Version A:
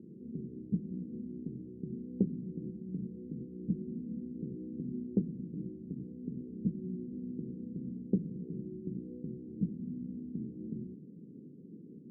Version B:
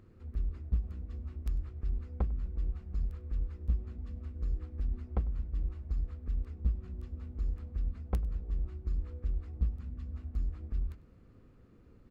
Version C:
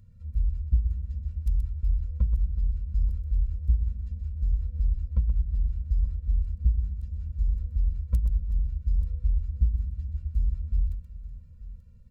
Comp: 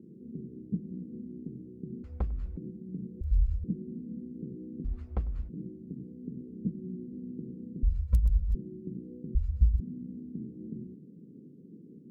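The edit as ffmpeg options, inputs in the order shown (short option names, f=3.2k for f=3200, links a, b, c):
-filter_complex "[1:a]asplit=2[a][b];[2:a]asplit=3[c][d][e];[0:a]asplit=6[f][g][h][i][j][k];[f]atrim=end=2.042[l];[a]atrim=start=2.038:end=2.572[m];[g]atrim=start=2.568:end=3.212[n];[c]atrim=start=3.208:end=3.642[o];[h]atrim=start=3.638:end=4.86[p];[b]atrim=start=4.84:end=5.5[q];[i]atrim=start=5.48:end=7.832[r];[d]atrim=start=7.828:end=8.552[s];[j]atrim=start=8.548:end=9.352[t];[e]atrim=start=9.348:end=9.802[u];[k]atrim=start=9.798[v];[l][m]acrossfade=d=0.004:c1=hsin:c2=hsin[w];[w][n]acrossfade=d=0.004:c1=hsin:c2=hsin[x];[x][o]acrossfade=d=0.004:c1=hsin:c2=hsin[y];[y][p]acrossfade=d=0.004:c1=hsin:c2=hsin[z];[z][q]acrossfade=d=0.02:c1=tri:c2=tri[aa];[aa][r]acrossfade=d=0.02:c1=tri:c2=tri[ab];[ab][s]acrossfade=d=0.004:c1=hsin:c2=hsin[ac];[ac][t]acrossfade=d=0.004:c1=hsin:c2=hsin[ad];[ad][u]acrossfade=d=0.004:c1=hsin:c2=hsin[ae];[ae][v]acrossfade=d=0.004:c1=hsin:c2=hsin"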